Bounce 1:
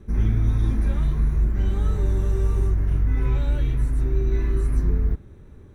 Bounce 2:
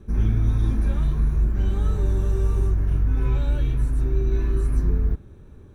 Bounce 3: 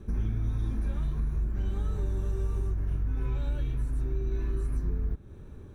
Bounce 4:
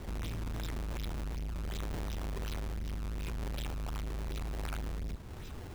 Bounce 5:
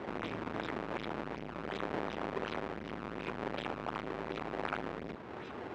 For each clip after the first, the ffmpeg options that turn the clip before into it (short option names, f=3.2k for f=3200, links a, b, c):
-af "bandreject=f=2k:w=8.3"
-af "acompressor=threshold=-30dB:ratio=2.5"
-af "asoftclip=type=tanh:threshold=-37.5dB,aexciter=amount=9.8:drive=5.4:freq=2.3k,acrusher=samples=21:mix=1:aa=0.000001:lfo=1:lforange=33.6:lforate=2.7,volume=2dB"
-af "highpass=300,lowpass=2.1k,volume=9dB"